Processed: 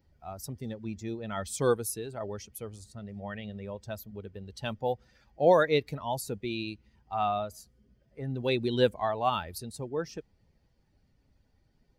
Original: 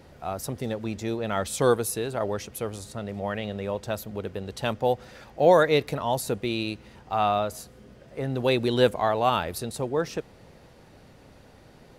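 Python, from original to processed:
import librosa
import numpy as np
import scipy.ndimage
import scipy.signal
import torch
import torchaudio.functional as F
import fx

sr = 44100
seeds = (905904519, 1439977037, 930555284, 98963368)

y = fx.bin_expand(x, sr, power=1.5)
y = F.gain(torch.from_numpy(y), -2.5).numpy()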